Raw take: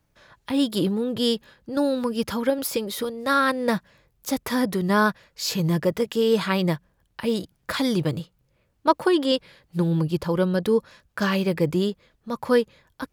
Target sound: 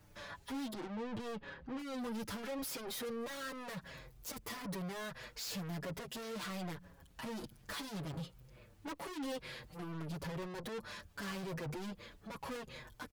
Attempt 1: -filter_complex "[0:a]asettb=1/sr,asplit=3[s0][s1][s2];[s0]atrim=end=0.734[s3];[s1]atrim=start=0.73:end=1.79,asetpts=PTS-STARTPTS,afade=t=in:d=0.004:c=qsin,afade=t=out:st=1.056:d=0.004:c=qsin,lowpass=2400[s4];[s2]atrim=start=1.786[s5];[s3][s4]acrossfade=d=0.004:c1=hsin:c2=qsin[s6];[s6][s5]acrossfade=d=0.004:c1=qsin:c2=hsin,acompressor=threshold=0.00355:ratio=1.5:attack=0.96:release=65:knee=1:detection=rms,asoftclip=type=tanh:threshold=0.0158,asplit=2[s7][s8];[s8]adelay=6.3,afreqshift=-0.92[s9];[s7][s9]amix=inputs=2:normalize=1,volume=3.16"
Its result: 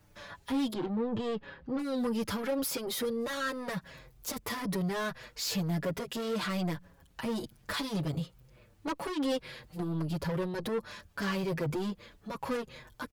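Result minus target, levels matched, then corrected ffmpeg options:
saturation: distortion -5 dB
-filter_complex "[0:a]asettb=1/sr,asplit=3[s0][s1][s2];[s0]atrim=end=0.734[s3];[s1]atrim=start=0.73:end=1.79,asetpts=PTS-STARTPTS,afade=t=in:d=0.004:c=qsin,afade=t=out:st=1.056:d=0.004:c=qsin,lowpass=2400[s4];[s2]atrim=start=1.786[s5];[s3][s4]acrossfade=d=0.004:c1=hsin:c2=qsin[s6];[s6][s5]acrossfade=d=0.004:c1=qsin:c2=hsin,acompressor=threshold=0.00355:ratio=1.5:attack=0.96:release=65:knee=1:detection=rms,asoftclip=type=tanh:threshold=0.00398,asplit=2[s7][s8];[s8]adelay=6.3,afreqshift=-0.92[s9];[s7][s9]amix=inputs=2:normalize=1,volume=3.16"

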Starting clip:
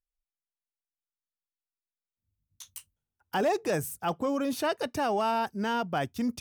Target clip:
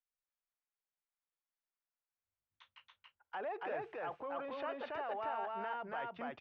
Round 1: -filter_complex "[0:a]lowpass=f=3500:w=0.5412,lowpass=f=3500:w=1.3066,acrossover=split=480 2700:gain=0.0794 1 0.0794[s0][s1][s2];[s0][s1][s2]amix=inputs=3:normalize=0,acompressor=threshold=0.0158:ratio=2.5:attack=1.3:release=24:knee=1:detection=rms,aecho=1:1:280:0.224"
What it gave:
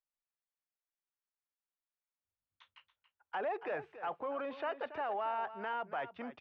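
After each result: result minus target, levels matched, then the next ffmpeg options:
echo-to-direct -11.5 dB; compression: peak gain reduction -5 dB
-filter_complex "[0:a]lowpass=f=3500:w=0.5412,lowpass=f=3500:w=1.3066,acrossover=split=480 2700:gain=0.0794 1 0.0794[s0][s1][s2];[s0][s1][s2]amix=inputs=3:normalize=0,acompressor=threshold=0.0158:ratio=2.5:attack=1.3:release=24:knee=1:detection=rms,aecho=1:1:280:0.841"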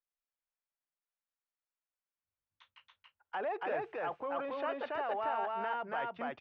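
compression: peak gain reduction -5 dB
-filter_complex "[0:a]lowpass=f=3500:w=0.5412,lowpass=f=3500:w=1.3066,acrossover=split=480 2700:gain=0.0794 1 0.0794[s0][s1][s2];[s0][s1][s2]amix=inputs=3:normalize=0,acompressor=threshold=0.00631:ratio=2.5:attack=1.3:release=24:knee=1:detection=rms,aecho=1:1:280:0.841"

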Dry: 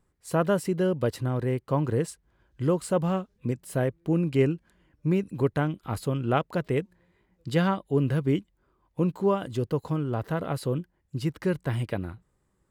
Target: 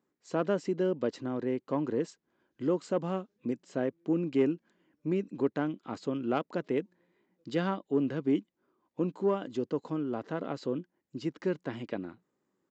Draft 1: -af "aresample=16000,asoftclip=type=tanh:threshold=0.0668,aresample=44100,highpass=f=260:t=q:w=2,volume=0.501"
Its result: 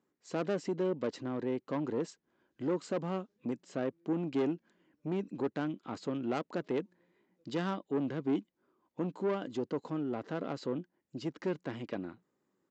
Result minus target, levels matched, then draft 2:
saturation: distortion +14 dB
-af "aresample=16000,asoftclip=type=tanh:threshold=0.224,aresample=44100,highpass=f=260:t=q:w=2,volume=0.501"

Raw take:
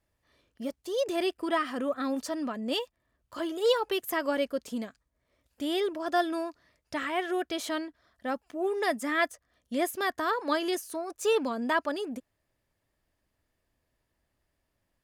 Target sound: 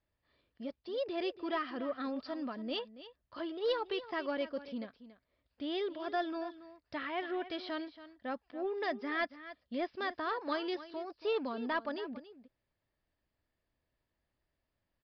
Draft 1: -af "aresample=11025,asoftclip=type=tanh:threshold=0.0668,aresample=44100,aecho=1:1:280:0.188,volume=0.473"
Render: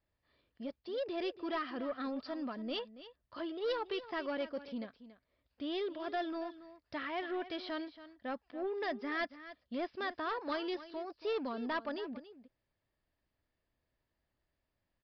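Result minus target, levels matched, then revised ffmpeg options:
saturation: distortion +9 dB
-af "aresample=11025,asoftclip=type=tanh:threshold=0.141,aresample=44100,aecho=1:1:280:0.188,volume=0.473"

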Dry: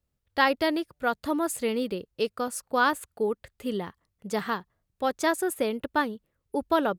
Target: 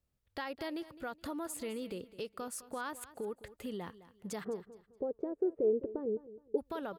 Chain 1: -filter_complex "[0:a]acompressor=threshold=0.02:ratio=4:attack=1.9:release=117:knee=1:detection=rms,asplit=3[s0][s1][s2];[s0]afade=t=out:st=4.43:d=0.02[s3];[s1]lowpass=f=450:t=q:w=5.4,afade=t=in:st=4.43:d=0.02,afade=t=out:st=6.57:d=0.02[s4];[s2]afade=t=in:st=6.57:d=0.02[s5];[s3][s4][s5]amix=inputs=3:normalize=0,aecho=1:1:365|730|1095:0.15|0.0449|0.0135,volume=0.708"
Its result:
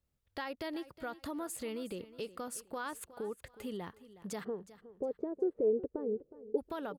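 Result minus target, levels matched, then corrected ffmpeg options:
echo 155 ms late
-filter_complex "[0:a]acompressor=threshold=0.02:ratio=4:attack=1.9:release=117:knee=1:detection=rms,asplit=3[s0][s1][s2];[s0]afade=t=out:st=4.43:d=0.02[s3];[s1]lowpass=f=450:t=q:w=5.4,afade=t=in:st=4.43:d=0.02,afade=t=out:st=6.57:d=0.02[s4];[s2]afade=t=in:st=6.57:d=0.02[s5];[s3][s4][s5]amix=inputs=3:normalize=0,aecho=1:1:210|420|630:0.15|0.0449|0.0135,volume=0.708"

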